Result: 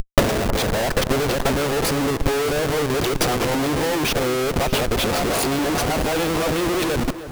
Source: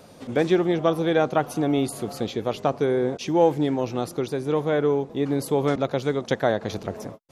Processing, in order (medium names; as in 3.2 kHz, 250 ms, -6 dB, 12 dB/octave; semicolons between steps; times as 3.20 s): reverse the whole clip; gate with hold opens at -34 dBFS; frequency weighting A; in parallel at +1 dB: upward compressor, threshold -25 dBFS; on the sum: Schmitt trigger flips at -31 dBFS; transient shaper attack +11 dB, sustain -11 dB; on a send: echo whose repeats swap between lows and highs 312 ms, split 1.6 kHz, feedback 60%, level -12 dB